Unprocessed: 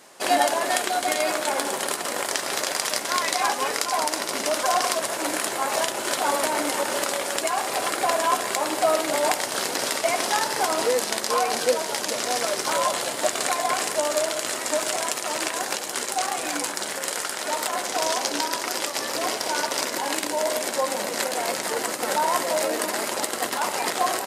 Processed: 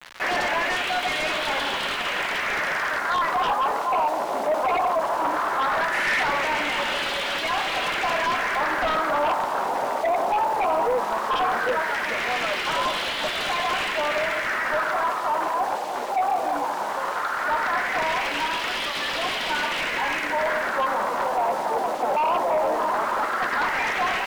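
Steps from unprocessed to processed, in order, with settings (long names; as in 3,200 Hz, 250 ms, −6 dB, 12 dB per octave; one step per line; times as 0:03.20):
auto-filter low-pass sine 0.17 Hz 770–3,300 Hz
bit reduction 7 bits
guitar amp tone stack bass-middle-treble 5-5-5
in parallel at −4 dB: sine wavefolder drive 20 dB, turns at −13.5 dBFS
on the sum: gain on a spectral selection 0:05.93–0:06.23, 1,700–12,000 Hz +8 dB
mid-hump overdrive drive 9 dB, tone 1,000 Hz, clips at −13.5 dBFS
parametric band 97 Hz −13 dB 0.5 octaves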